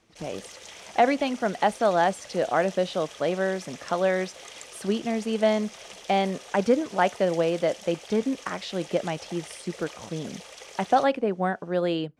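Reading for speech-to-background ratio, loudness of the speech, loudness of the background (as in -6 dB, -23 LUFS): 16.5 dB, -26.5 LUFS, -43.0 LUFS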